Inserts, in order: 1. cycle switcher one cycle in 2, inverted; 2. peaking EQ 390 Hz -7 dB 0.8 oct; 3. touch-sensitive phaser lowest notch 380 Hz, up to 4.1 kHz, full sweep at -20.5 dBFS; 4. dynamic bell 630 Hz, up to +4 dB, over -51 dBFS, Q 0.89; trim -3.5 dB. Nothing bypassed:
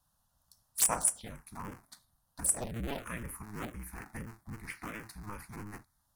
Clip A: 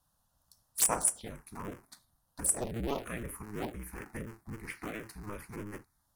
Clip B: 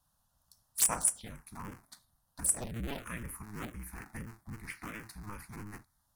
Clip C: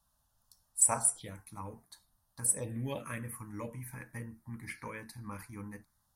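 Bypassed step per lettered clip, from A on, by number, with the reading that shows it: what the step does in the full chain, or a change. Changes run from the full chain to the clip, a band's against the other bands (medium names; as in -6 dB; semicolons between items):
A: 2, 500 Hz band +4.5 dB; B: 4, 500 Hz band -3.0 dB; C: 1, 4 kHz band -8.0 dB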